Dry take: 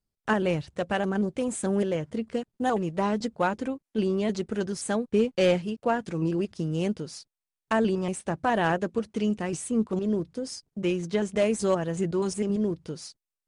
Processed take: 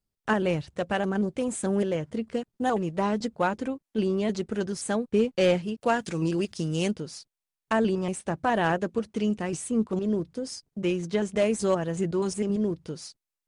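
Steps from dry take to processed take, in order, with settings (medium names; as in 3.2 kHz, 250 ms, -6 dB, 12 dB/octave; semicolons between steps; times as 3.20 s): 5.81–6.91 s: treble shelf 2.3 kHz +11 dB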